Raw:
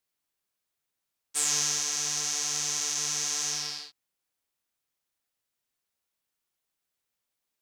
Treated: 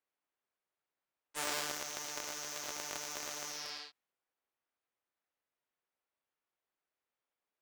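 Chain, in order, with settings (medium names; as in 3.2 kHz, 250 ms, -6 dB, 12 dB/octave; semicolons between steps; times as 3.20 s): Chebyshev shaper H 2 -8 dB, 3 -13 dB, 7 -13 dB, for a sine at -10.5 dBFS; tone controls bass -11 dB, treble -12 dB; tape noise reduction on one side only decoder only; trim -1 dB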